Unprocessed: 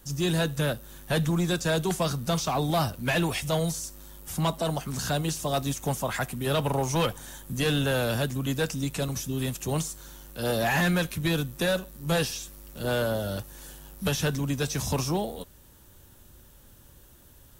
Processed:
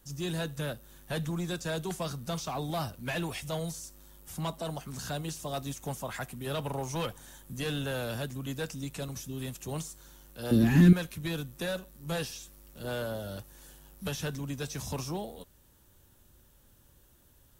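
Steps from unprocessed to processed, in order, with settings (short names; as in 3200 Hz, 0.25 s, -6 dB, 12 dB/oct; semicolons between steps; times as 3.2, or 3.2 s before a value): 10.51–10.93 resonant low shelf 430 Hz +13.5 dB, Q 3; gain -8 dB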